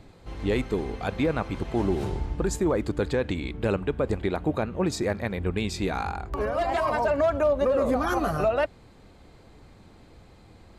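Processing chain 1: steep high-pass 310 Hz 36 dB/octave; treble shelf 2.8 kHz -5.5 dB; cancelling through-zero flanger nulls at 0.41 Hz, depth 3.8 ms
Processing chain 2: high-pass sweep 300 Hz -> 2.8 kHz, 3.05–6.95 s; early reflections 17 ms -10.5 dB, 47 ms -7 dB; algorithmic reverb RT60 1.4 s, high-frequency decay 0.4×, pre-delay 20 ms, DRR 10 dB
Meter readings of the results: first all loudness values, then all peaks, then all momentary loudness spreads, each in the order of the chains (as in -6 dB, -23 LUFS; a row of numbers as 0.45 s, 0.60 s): -32.0 LUFS, -25.0 LUFS; -16.0 dBFS, -7.0 dBFS; 9 LU, 15 LU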